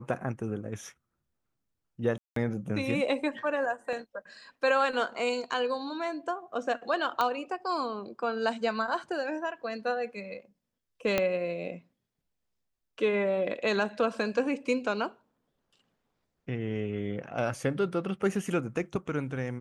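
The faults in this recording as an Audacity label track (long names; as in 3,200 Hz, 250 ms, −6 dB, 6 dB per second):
2.180000	2.360000	drop-out 183 ms
3.930000	3.930000	drop-out 2 ms
7.210000	7.210000	click −14 dBFS
11.180000	11.180000	click −11 dBFS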